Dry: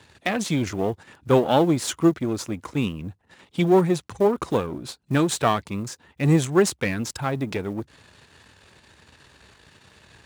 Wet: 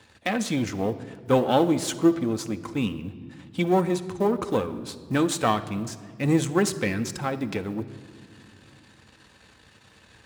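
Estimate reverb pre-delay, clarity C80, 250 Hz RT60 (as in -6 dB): 4 ms, 16.0 dB, 3.5 s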